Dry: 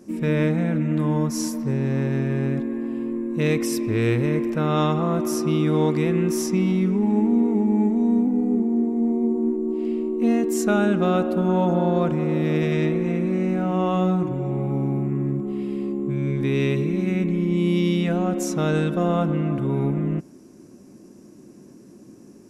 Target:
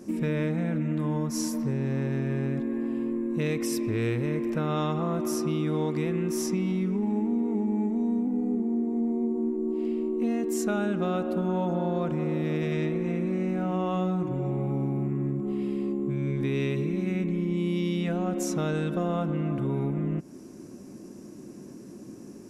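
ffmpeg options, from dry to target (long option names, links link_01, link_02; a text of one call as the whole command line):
ffmpeg -i in.wav -af "acompressor=threshold=-30dB:ratio=3,volume=2.5dB" out.wav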